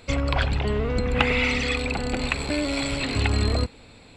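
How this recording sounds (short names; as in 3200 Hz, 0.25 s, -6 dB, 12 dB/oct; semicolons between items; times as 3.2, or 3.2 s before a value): noise floor -49 dBFS; spectral tilt -5.0 dB/oct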